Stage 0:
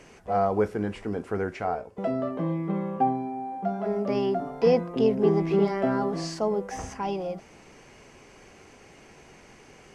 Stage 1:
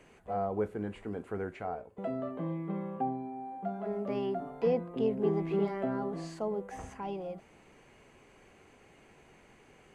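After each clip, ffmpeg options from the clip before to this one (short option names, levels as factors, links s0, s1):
-filter_complex "[0:a]equalizer=f=5400:t=o:w=0.39:g=-13,acrossover=split=780[s0][s1];[s1]alimiter=level_in=1.5:limit=0.0631:level=0:latency=1:release=437,volume=0.668[s2];[s0][s2]amix=inputs=2:normalize=0,volume=0.422"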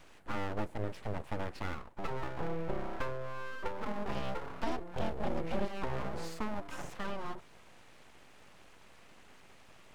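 -filter_complex "[0:a]aeval=exprs='0.133*(cos(1*acos(clip(val(0)/0.133,-1,1)))-cos(1*PI/2))+0.00473*(cos(5*acos(clip(val(0)/0.133,-1,1)))-cos(5*PI/2))+0.00841*(cos(7*acos(clip(val(0)/0.133,-1,1)))-cos(7*PI/2))':c=same,acrossover=split=170|3000[s0][s1][s2];[s1]acompressor=threshold=0.0126:ratio=6[s3];[s0][s3][s2]amix=inputs=3:normalize=0,aeval=exprs='abs(val(0))':c=same,volume=2"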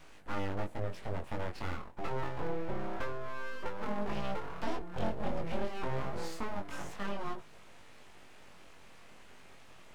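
-filter_complex "[0:a]asplit=2[s0][s1];[s1]alimiter=level_in=2:limit=0.0631:level=0:latency=1:release=206,volume=0.501,volume=0.708[s2];[s0][s2]amix=inputs=2:normalize=0,flanger=delay=19.5:depth=3.7:speed=0.27"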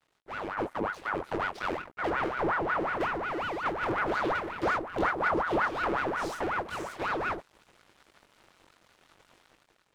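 -af "aeval=exprs='sgn(val(0))*max(abs(val(0))-0.00299,0)':c=same,dynaudnorm=f=150:g=7:m=3.76,aeval=exprs='val(0)*sin(2*PI*900*n/s+900*0.65/5.5*sin(2*PI*5.5*n/s))':c=same,volume=0.501"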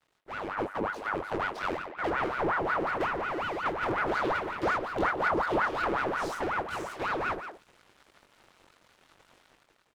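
-filter_complex "[0:a]asplit=2[s0][s1];[s1]adelay=170,highpass=300,lowpass=3400,asoftclip=type=hard:threshold=0.0596,volume=0.355[s2];[s0][s2]amix=inputs=2:normalize=0"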